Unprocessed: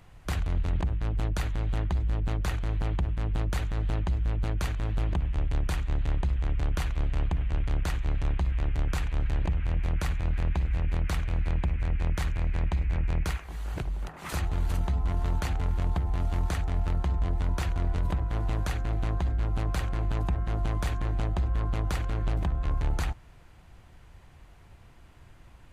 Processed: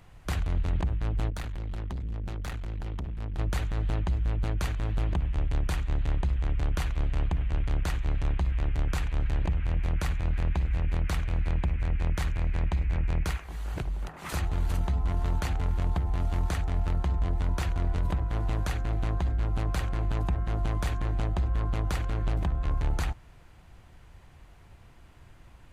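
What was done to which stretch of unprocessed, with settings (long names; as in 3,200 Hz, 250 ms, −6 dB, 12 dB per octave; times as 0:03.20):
0:01.30–0:03.39: tube saturation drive 30 dB, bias 0.7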